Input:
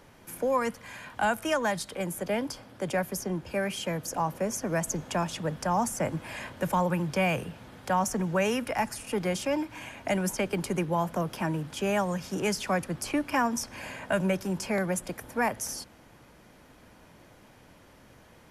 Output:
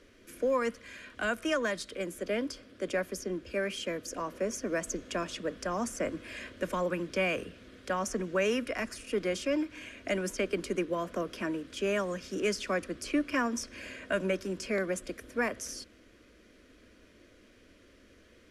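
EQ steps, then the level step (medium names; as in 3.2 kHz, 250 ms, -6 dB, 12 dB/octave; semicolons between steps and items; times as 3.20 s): dynamic bell 940 Hz, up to +7 dB, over -40 dBFS, Q 1.2; distance through air 56 m; static phaser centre 350 Hz, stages 4; 0.0 dB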